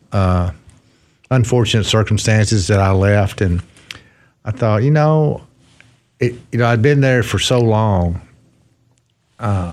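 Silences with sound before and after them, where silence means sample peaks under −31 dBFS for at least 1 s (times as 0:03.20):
0:08.23–0:09.39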